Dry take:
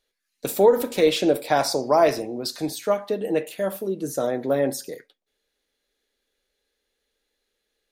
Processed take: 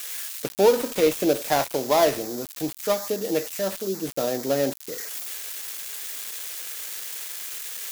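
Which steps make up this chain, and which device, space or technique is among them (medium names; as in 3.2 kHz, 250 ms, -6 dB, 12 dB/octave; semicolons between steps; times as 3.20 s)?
budget class-D amplifier (dead-time distortion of 0.16 ms; zero-crossing glitches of -16 dBFS); trim -1.5 dB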